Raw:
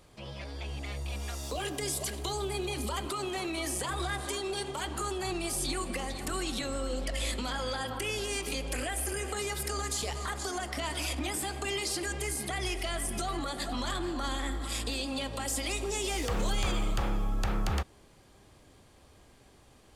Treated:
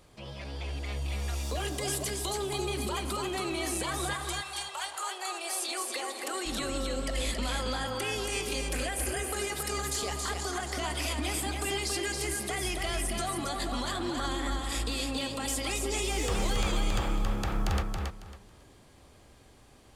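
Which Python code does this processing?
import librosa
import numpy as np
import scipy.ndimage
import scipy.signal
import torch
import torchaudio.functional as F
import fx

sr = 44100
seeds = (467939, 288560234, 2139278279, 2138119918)

y = fx.highpass(x, sr, hz=fx.line((4.13, 900.0), (6.45, 300.0)), slope=24, at=(4.13, 6.45), fade=0.02)
y = fx.echo_feedback(y, sr, ms=275, feedback_pct=22, wet_db=-4.0)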